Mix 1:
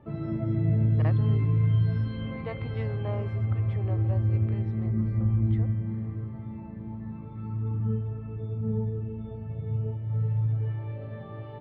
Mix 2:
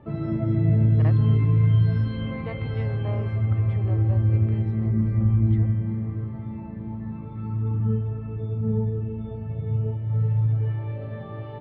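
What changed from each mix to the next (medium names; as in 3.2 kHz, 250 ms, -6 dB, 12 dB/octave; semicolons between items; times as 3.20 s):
background +4.5 dB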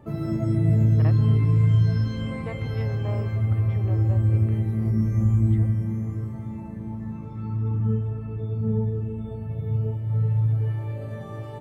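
background: remove steep low-pass 3.9 kHz 36 dB/octave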